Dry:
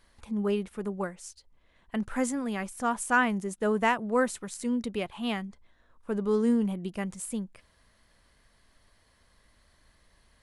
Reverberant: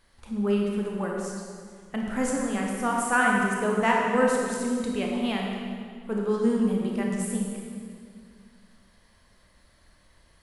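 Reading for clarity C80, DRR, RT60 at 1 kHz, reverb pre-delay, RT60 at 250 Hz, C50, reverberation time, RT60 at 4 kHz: 1.5 dB, -1.5 dB, 1.9 s, 24 ms, 2.6 s, 0.0 dB, 2.1 s, 1.7 s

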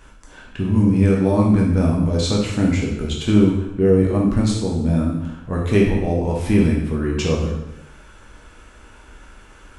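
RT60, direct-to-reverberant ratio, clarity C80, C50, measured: 0.95 s, -3.0 dB, 5.5 dB, 2.5 dB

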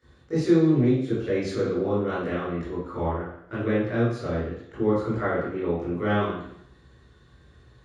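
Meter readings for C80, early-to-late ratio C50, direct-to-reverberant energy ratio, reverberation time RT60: 4.0 dB, -0.5 dB, -11.0 dB, 0.70 s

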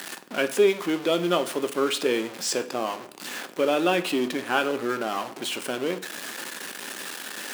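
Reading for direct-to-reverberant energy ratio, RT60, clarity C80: 9.0 dB, 0.55 s, 18.5 dB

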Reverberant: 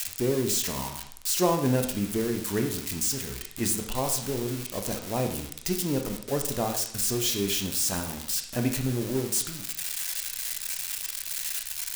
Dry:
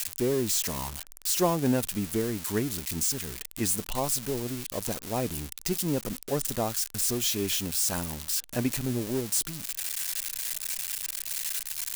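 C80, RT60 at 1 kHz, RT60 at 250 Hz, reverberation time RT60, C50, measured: 11.0 dB, 0.70 s, 0.75 s, 0.70 s, 7.5 dB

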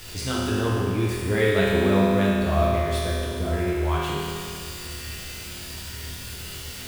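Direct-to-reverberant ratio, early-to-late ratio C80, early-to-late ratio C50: -7.5 dB, -1.0 dB, -3.0 dB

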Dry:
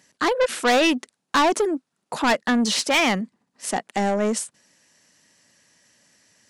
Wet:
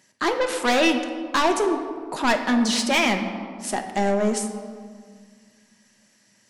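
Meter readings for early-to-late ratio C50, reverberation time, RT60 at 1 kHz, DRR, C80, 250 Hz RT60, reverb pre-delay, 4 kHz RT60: 8.0 dB, 1.9 s, 1.8 s, 4.0 dB, 9.0 dB, 2.6 s, 3 ms, 1.0 s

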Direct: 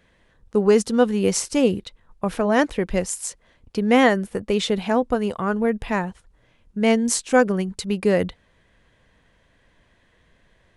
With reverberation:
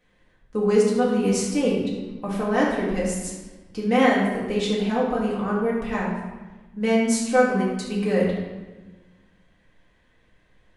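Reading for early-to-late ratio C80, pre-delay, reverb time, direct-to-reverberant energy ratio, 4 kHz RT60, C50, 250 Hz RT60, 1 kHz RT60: 3.5 dB, 4 ms, 1.2 s, -6.0 dB, 0.90 s, 1.5 dB, 1.7 s, 1.2 s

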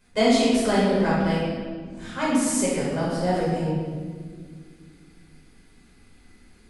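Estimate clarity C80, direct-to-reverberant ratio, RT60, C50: 1.0 dB, -9.0 dB, 1.8 s, -2.0 dB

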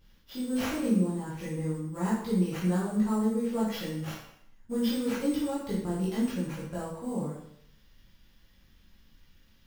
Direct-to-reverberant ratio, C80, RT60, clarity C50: -8.5 dB, 5.0 dB, 0.70 s, 1.5 dB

